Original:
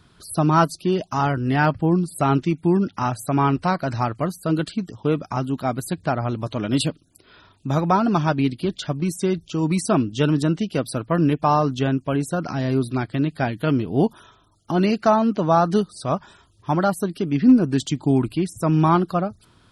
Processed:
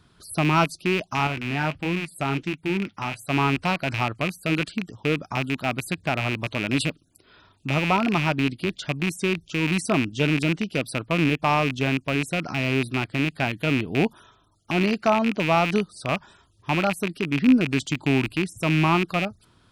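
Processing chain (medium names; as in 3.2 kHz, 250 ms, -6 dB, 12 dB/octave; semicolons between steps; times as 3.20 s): rattle on loud lows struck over -26 dBFS, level -12 dBFS; 1.27–3.30 s: flange 1.5 Hz, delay 1.5 ms, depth 6.1 ms, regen -63%; trim -3.5 dB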